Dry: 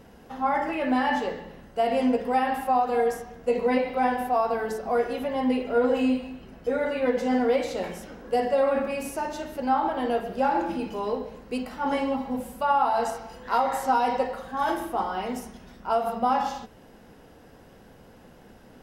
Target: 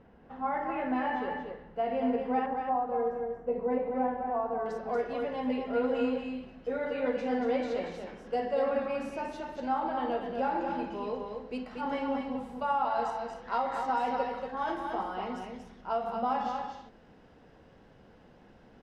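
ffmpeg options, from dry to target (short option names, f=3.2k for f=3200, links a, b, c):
-af "asetnsamples=n=441:p=0,asendcmd='2.46 lowpass f 1100;4.66 lowpass f 4400',lowpass=2.2k,aecho=1:1:234:0.562,volume=-7dB"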